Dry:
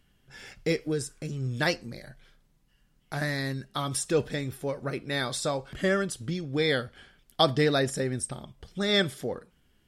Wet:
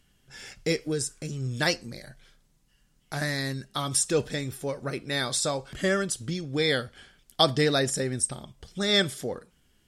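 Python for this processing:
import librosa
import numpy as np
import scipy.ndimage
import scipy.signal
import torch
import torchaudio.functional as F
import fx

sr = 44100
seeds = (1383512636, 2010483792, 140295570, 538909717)

y = fx.peak_eq(x, sr, hz=7400.0, db=7.5, octaves=1.6)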